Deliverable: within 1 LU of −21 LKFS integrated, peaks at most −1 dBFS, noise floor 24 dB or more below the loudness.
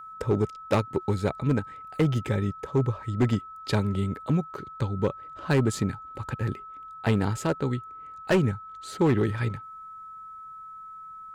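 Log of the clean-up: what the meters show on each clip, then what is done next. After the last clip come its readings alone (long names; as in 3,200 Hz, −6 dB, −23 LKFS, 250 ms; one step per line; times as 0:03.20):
share of clipped samples 1.1%; peaks flattened at −16.5 dBFS; interfering tone 1,300 Hz; level of the tone −40 dBFS; integrated loudness −27.5 LKFS; sample peak −16.5 dBFS; target loudness −21.0 LKFS
→ clipped peaks rebuilt −16.5 dBFS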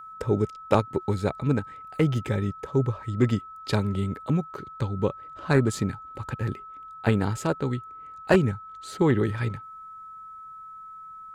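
share of clipped samples 0.0%; interfering tone 1,300 Hz; level of the tone −40 dBFS
→ notch filter 1,300 Hz, Q 30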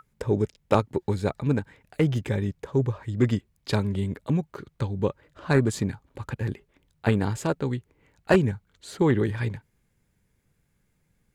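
interfering tone none found; integrated loudness −26.5 LKFS; sample peak −7.0 dBFS; target loudness −21.0 LKFS
→ level +5.5 dB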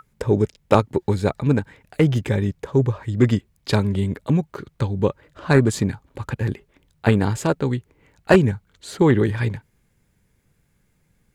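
integrated loudness −21.0 LKFS; sample peak −1.5 dBFS; background noise floor −65 dBFS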